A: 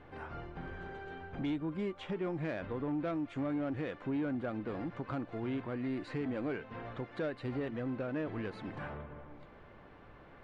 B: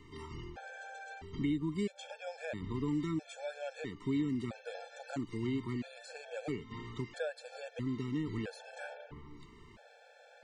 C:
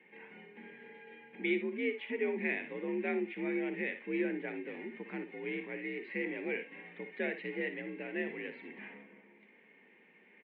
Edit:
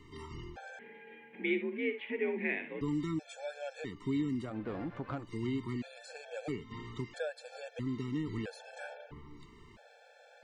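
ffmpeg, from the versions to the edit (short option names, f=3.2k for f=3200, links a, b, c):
-filter_complex "[1:a]asplit=3[a][b][c];[a]atrim=end=0.792[d];[2:a]atrim=start=0.788:end=2.812[e];[b]atrim=start=2.808:end=4.57[f];[0:a]atrim=start=4.41:end=5.3[g];[c]atrim=start=5.14[h];[d][e]acrossfade=d=0.004:c1=hsin:c2=hsin[i];[i][f]acrossfade=d=0.004:c1=hsin:c2=hsin[j];[j][g]acrossfade=d=0.16:c1=tri:c2=tri[k];[k][h]acrossfade=d=0.16:c1=tri:c2=tri"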